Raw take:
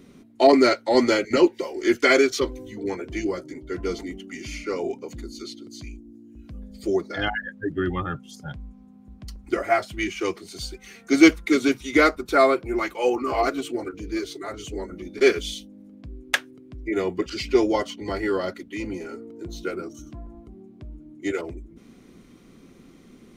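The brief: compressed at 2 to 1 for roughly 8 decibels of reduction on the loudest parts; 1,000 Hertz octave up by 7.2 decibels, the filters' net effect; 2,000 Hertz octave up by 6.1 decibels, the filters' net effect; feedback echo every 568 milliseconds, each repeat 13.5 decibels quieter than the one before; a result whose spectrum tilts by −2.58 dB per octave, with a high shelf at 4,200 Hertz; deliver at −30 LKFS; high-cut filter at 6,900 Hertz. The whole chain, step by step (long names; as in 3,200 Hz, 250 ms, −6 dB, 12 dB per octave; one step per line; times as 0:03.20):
low-pass filter 6,900 Hz
parametric band 1,000 Hz +9 dB
parametric band 2,000 Hz +4 dB
high-shelf EQ 4,200 Hz +3.5 dB
downward compressor 2 to 1, threshold −21 dBFS
repeating echo 568 ms, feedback 21%, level −13.5 dB
level −5 dB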